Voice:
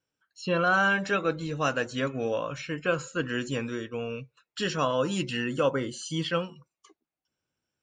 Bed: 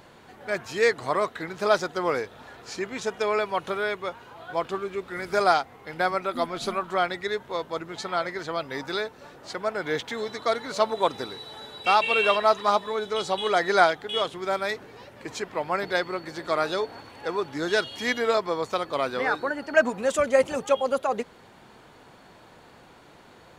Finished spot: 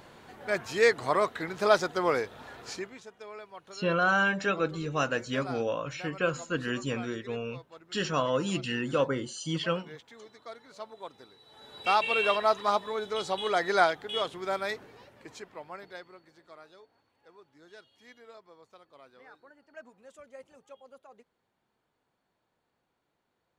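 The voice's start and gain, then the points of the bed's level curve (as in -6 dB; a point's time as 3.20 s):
3.35 s, -1.5 dB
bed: 2.70 s -1 dB
3.07 s -19.5 dB
11.37 s -19.5 dB
11.81 s -4.5 dB
14.75 s -4.5 dB
16.72 s -28 dB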